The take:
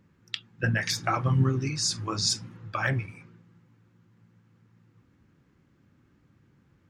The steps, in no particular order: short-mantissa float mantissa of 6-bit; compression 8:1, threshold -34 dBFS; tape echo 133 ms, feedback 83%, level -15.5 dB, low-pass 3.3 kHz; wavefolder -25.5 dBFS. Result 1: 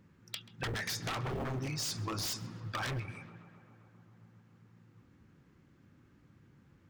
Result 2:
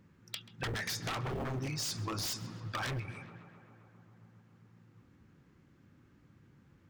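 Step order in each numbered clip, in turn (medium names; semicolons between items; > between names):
short-mantissa float > wavefolder > compression > tape echo; short-mantissa float > wavefolder > tape echo > compression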